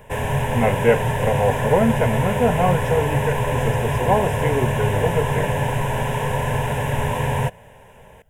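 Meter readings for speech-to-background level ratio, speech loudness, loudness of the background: 0.0 dB, -22.5 LUFS, -22.5 LUFS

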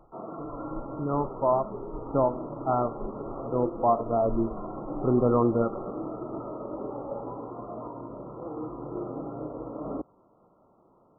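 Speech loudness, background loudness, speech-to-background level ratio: -27.5 LUFS, -37.5 LUFS, 10.0 dB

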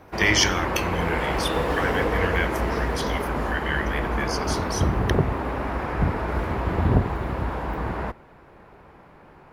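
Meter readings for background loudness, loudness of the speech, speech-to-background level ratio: -26.0 LUFS, -27.5 LUFS, -1.5 dB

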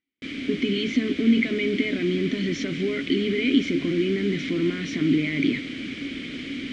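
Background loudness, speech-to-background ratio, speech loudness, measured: -32.5 LUFS, 8.0 dB, -24.5 LUFS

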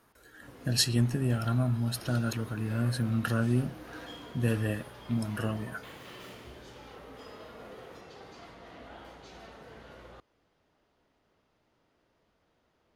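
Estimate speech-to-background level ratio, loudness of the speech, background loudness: 17.5 dB, -30.5 LUFS, -48.0 LUFS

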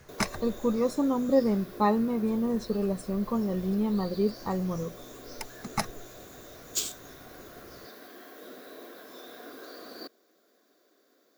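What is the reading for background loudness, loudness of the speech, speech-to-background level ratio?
-42.5 LUFS, -28.5 LUFS, 14.0 dB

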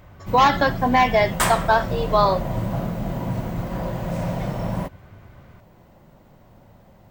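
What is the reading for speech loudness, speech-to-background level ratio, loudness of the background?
-19.5 LUFS, 7.5 dB, -27.0 LUFS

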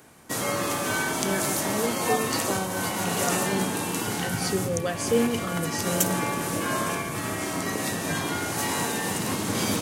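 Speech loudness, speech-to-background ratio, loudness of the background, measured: -30.5 LUFS, -3.5 dB, -27.0 LUFS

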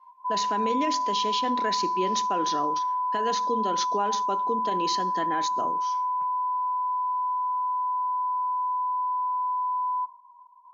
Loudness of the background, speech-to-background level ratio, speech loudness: -27.0 LUFS, -4.0 dB, -31.0 LUFS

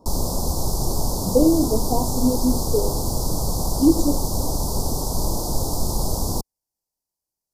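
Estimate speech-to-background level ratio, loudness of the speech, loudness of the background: 3.0 dB, -22.0 LUFS, -25.0 LUFS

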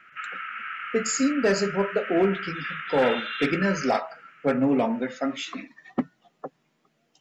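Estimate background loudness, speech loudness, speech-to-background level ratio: -33.5 LUFS, -26.0 LUFS, 7.5 dB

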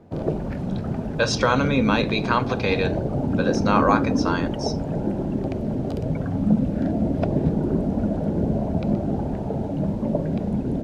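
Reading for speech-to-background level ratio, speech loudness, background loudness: 1.5 dB, -23.5 LUFS, -25.0 LUFS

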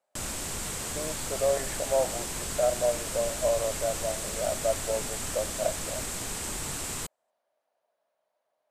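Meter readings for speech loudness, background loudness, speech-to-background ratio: -31.0 LUFS, -32.5 LUFS, 1.5 dB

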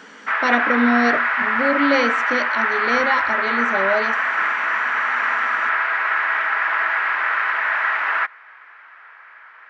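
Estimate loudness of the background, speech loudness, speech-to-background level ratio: -19.0 LUFS, -22.5 LUFS, -3.5 dB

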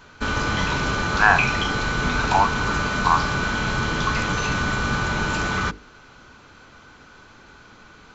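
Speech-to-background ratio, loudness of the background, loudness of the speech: 1.5 dB, -23.0 LUFS, -21.5 LUFS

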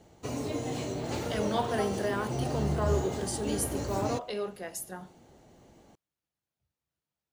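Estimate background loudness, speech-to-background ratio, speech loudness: -34.0 LUFS, 0.0 dB, -34.0 LUFS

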